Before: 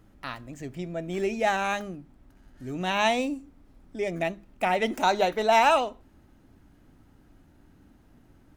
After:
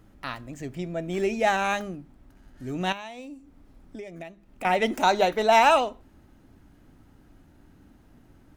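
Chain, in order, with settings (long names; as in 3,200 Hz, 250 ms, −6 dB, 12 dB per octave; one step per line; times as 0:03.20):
0:02.92–0:04.65: downward compressor 10 to 1, threshold −39 dBFS, peak gain reduction 20 dB
level +2 dB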